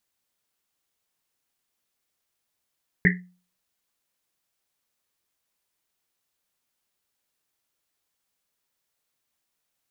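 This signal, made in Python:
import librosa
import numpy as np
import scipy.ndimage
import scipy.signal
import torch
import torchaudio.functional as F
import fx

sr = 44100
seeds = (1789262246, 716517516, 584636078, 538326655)

y = fx.risset_drum(sr, seeds[0], length_s=1.1, hz=180.0, decay_s=0.39, noise_hz=1900.0, noise_width_hz=340.0, noise_pct=50)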